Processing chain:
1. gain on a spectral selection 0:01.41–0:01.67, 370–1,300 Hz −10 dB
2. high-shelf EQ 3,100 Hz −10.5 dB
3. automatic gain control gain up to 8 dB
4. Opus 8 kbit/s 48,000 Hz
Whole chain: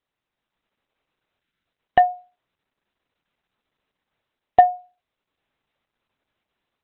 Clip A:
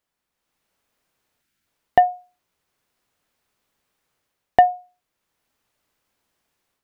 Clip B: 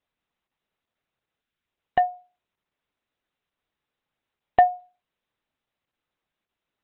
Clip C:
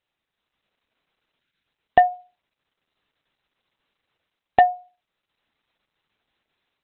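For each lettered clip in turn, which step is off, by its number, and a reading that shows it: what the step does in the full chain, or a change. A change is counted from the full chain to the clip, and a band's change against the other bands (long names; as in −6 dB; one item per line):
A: 4, 250 Hz band +2.0 dB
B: 3, change in momentary loudness spread +2 LU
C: 2, 2 kHz band +4.0 dB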